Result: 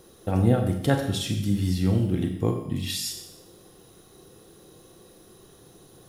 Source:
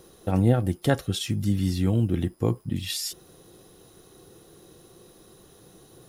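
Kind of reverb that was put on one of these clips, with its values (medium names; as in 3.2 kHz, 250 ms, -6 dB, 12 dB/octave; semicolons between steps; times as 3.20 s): Schroeder reverb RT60 0.8 s, combs from 29 ms, DRR 4 dB; trim -1 dB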